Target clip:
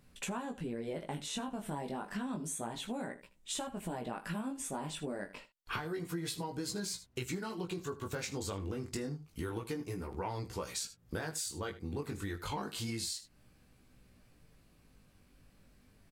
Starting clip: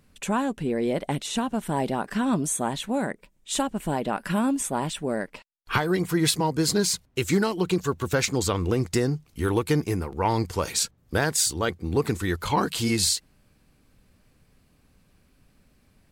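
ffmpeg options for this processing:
-af "flanger=delay=16:depth=4.5:speed=0.29,aecho=1:1:24|78:0.188|0.133,acompressor=threshold=-37dB:ratio=5"

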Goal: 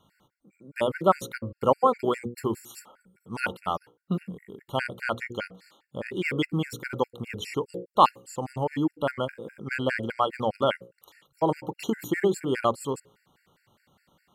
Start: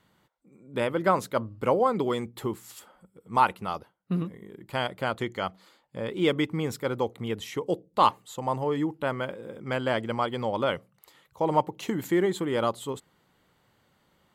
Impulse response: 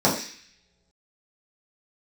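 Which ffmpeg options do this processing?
-af "bandreject=f=60:t=h:w=6,bandreject=f=120:t=h:w=6,bandreject=f=180:t=h:w=6,bandreject=f=240:t=h:w=6,bandreject=f=300:t=h:w=6,bandreject=f=360:t=h:w=6,bandreject=f=420:t=h:w=6,bandreject=f=480:t=h:w=6,bandreject=f=540:t=h:w=6,afftfilt=real='re*gt(sin(2*PI*4.9*pts/sr)*(1-2*mod(floor(b*sr/1024/1400),2)),0)':imag='im*gt(sin(2*PI*4.9*pts/sr)*(1-2*mod(floor(b*sr/1024/1400),2)),0)':win_size=1024:overlap=0.75,volume=4dB"

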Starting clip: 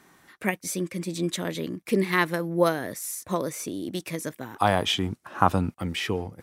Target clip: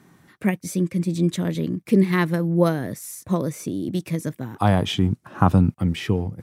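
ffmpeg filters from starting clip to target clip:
-af "equalizer=f=130:w=0.51:g=14.5,volume=-2.5dB"

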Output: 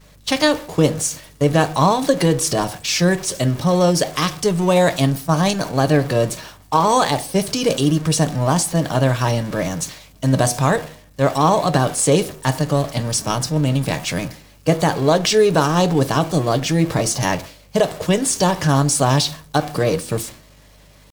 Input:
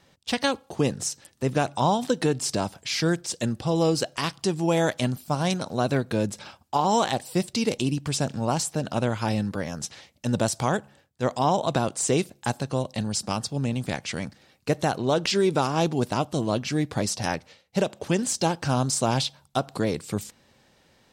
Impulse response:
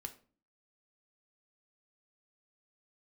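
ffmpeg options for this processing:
-filter_complex "[0:a]aeval=exprs='val(0)+0.5*0.0211*sgn(val(0))':c=same,agate=range=-33dB:threshold=-29dB:ratio=3:detection=peak,bandreject=f=222.8:t=h:w=4,bandreject=f=445.6:t=h:w=4,bandreject=f=668.4:t=h:w=4,asetrate=48091,aresample=44100,atempo=0.917004,aeval=exprs='val(0)+0.00178*(sin(2*PI*50*n/s)+sin(2*PI*2*50*n/s)/2+sin(2*PI*3*50*n/s)/3+sin(2*PI*4*50*n/s)/4+sin(2*PI*5*50*n/s)/5)':c=same,asplit=2[a][b];[1:a]atrim=start_sample=2205,asetrate=57330,aresample=44100[c];[b][c]afir=irnorm=-1:irlink=0,volume=7.5dB[d];[a][d]amix=inputs=2:normalize=0"

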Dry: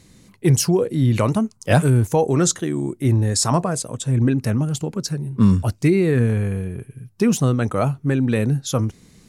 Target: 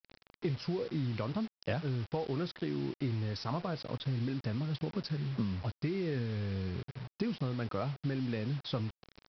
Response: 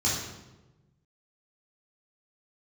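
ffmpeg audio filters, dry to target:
-af "acompressor=threshold=-24dB:ratio=16,aresample=11025,acrusher=bits=6:mix=0:aa=0.000001,aresample=44100,volume=-6.5dB"

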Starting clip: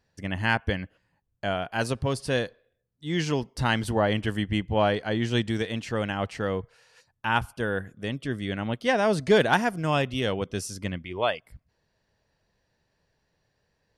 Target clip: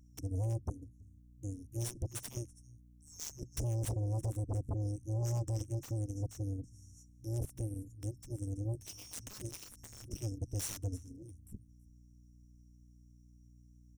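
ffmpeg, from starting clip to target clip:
-filter_complex "[0:a]afftfilt=real='re*(1-between(b*sr/4096,120,5400))':imag='im*(1-between(b*sr/4096,120,5400))':win_size=4096:overlap=0.75,acompressor=threshold=-46dB:ratio=1.5,asoftclip=type=tanh:threshold=-32.5dB,asplit=2[a][b];[b]aecho=0:1:328:0.0944[c];[a][c]amix=inputs=2:normalize=0,aeval=exprs='val(0)+0.000708*(sin(2*PI*60*n/s)+sin(2*PI*2*60*n/s)/2+sin(2*PI*3*60*n/s)/3+sin(2*PI*4*60*n/s)/4+sin(2*PI*5*60*n/s)/5)':c=same,aeval=exprs='0.0237*(cos(1*acos(clip(val(0)/0.0237,-1,1)))-cos(1*PI/2))+0.0075*(cos(7*acos(clip(val(0)/0.0237,-1,1)))-cos(7*PI/2))':c=same,adynamicequalizer=threshold=0.00126:dfrequency=6400:dqfactor=0.7:tfrequency=6400:tqfactor=0.7:attack=5:release=100:ratio=0.375:range=2:mode=cutabove:tftype=highshelf,volume=3dB"

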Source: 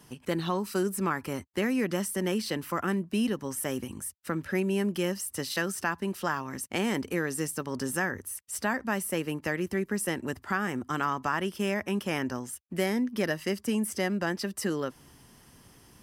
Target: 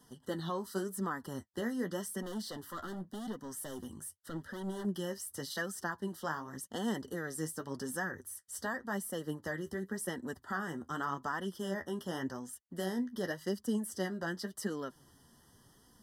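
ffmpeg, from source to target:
-filter_complex "[0:a]asettb=1/sr,asplit=3[a][b][c];[a]atrim=end=2.224[d];[b]atrim=start=2.22:end=4.85,asetpts=PTS-STARTPTS,afade=t=in:d=0.004:c=qsin,afade=t=out:st=2.626:d=0.004:c=qsin,volume=30dB,asoftclip=hard,volume=-30dB[e];[c]atrim=start=4.846[f];[d][e]acrossfade=d=0.004:c1=hsin:c2=qsin[g];[g][f]acrossfade=d=0.004:c1=qsin:c2=hsin,flanger=delay=3.9:depth=9.1:regen=42:speed=0.88:shape=sinusoidal,asuperstop=centerf=2400:order=20:qfactor=2.6,volume=-3.5dB"

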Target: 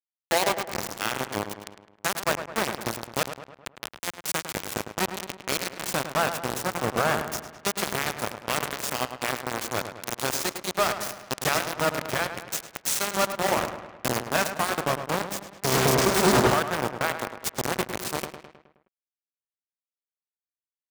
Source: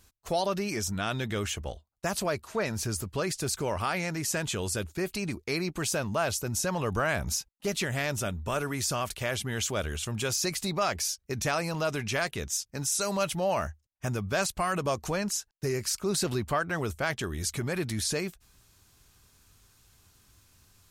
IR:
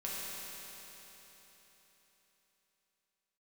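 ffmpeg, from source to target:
-filter_complex "[0:a]asettb=1/sr,asplit=3[a][b][c];[a]atrim=end=3.234[d];[b]atrim=start=3.23:end=4.03,asetpts=PTS-STARTPTS,afade=t=in:d=0.004:c=qsin,afade=t=out:st=0.796:d=0.004:c=qsin,acrossover=split=480|4300[e][f][g];[e]acompressor=threshold=-43dB:ratio=4[h];[f]acompressor=threshold=-34dB:ratio=4[i];[g]acompressor=threshold=-41dB:ratio=4[j];[h][i][j]amix=inputs=3:normalize=0[k];[c]atrim=start=4.026[l];[d][k]acrossfade=d=0.004:c1=hsin:c2=qsin[m];[m][l]acrossfade=d=0.004:c1=qsin:c2=hsin,asplit=2[n][o];[1:a]atrim=start_sample=2205,adelay=8[p];[o][p]afir=irnorm=-1:irlink=0,volume=-10dB[q];[n][q]amix=inputs=2:normalize=0,acrusher=bits=3:mix=0:aa=0.000001,asplit=2[r][s];[s]adelay=105,lowpass=f=3.1k:p=1,volume=-9dB,asplit=2[t][u];[u]adelay=105,lowpass=f=3.1k:p=1,volume=0.54,asplit=2[v][w];[w]adelay=105,lowpass=f=3.1k:p=1,volume=0.54,asplit=2[x][y];[y]adelay=105,lowpass=f=3.1k:p=1,volume=0.54,asplit=2[z][aa];[aa]adelay=105,lowpass=f=3.1k:p=1,volume=0.54,asplit=2[ab][ac];[ac]adelay=105,lowpass=f=3.1k:p=1,volume=0.54[ad];[r][t][v][x][z][ab][ad]amix=inputs=7:normalize=0,asettb=1/sr,asplit=3[ae][af][ag];[ae]atrim=end=15.724[ah];[af]atrim=start=15.72:end=16.54,asetpts=PTS-STARTPTS,afade=t=in:d=0.004:c=qsin,afade=t=out:st=0.816:d=0.004:c=qsin,aeval=exprs='0.211*sin(PI/2*7.94*val(0)/0.211)':c=same[ai];[ag]atrim=start=16.536[aj];[ah][ai]acrossfade=d=0.004:c1=hsin:c2=qsin[ak];[ak][aj]acrossfade=d=0.004:c1=qsin:c2=hsin,highpass=f=110:p=1,adynamicequalizer=threshold=0.00794:dfrequency=1900:dqfactor=0.7:tfrequency=1900:tqfactor=0.7:attack=5:release=100:ratio=0.375:range=4:mode=cutabove:tftype=highshelf,volume=3.5dB"

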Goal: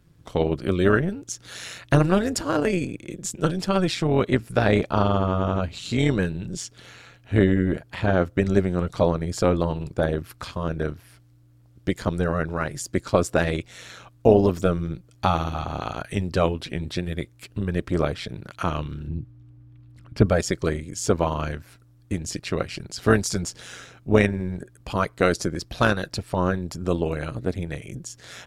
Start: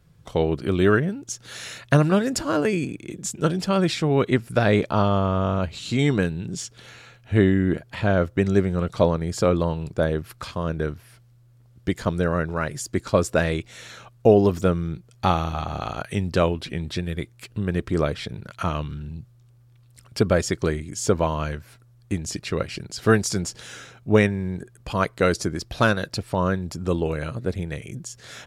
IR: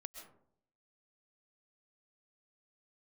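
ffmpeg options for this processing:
-filter_complex "[0:a]asettb=1/sr,asplit=3[a][b][c];[a]atrim=end=19.084[d];[b]atrim=start=19.08:end=20.26,asetpts=PTS-STARTPTS,afade=t=in:d=0.004:c=qsin,afade=t=out:st=1.176:d=0.004:c=qsin,bass=f=250:g=7,treble=f=4k:g=-13[e];[c]atrim=start=20.256[f];[d][e]acrossfade=d=0.004:c1=hsin:c2=qsin[g];[g][f]acrossfade=d=0.004:c1=qsin:c2=hsin,tremolo=f=180:d=0.621,volume=2dB"

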